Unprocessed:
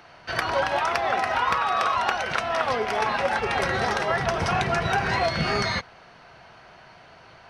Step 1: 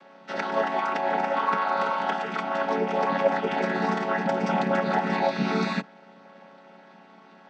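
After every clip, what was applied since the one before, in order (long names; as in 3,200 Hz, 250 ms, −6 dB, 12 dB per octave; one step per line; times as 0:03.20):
channel vocoder with a chord as carrier minor triad, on F#3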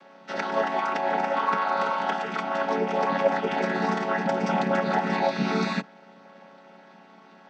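parametric band 6,000 Hz +2.5 dB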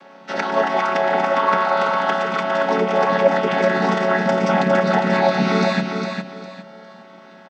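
repeating echo 406 ms, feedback 28%, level −6 dB
level +6.5 dB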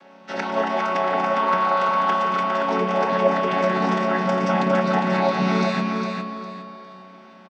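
double-tracking delay 22 ms −13 dB
spring reverb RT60 2.9 s, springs 32 ms, chirp 30 ms, DRR 4.5 dB
level −4.5 dB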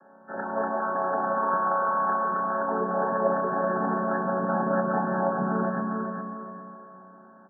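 linear-phase brick-wall low-pass 1,800 Hz
hum removal 91.57 Hz, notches 28
level −4.5 dB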